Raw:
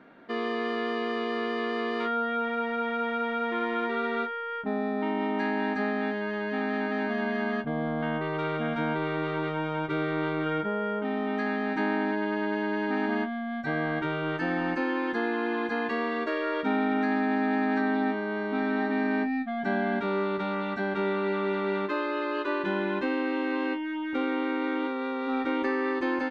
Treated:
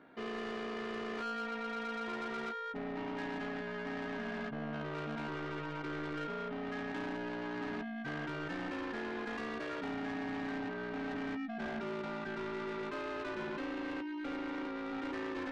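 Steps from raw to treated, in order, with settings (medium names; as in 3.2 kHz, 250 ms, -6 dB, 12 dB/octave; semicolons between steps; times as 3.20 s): saturation -30.5 dBFS, distortion -9 dB; granular stretch 0.59×, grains 35 ms; trim -4.5 dB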